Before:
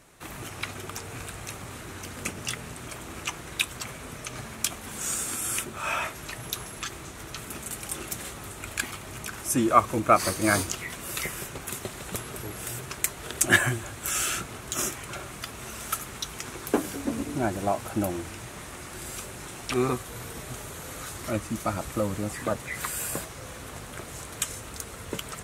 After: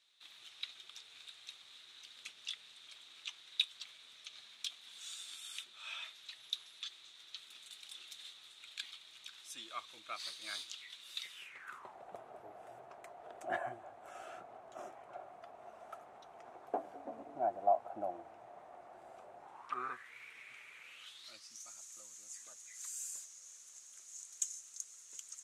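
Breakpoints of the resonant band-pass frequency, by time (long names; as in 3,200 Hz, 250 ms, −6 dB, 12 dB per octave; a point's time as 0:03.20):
resonant band-pass, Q 6.6
0:11.31 3,700 Hz
0:11.98 710 Hz
0:19.41 710 Hz
0:20.16 2,300 Hz
0:20.81 2,300 Hz
0:21.67 6,600 Hz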